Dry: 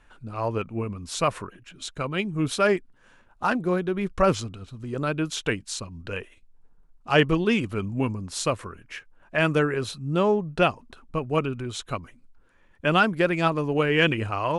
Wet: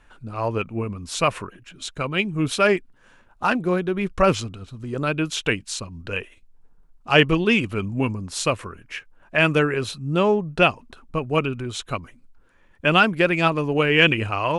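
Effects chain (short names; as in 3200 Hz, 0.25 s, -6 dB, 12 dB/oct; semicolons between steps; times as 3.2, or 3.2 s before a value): dynamic EQ 2600 Hz, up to +6 dB, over -43 dBFS, Q 2.3; gain +2.5 dB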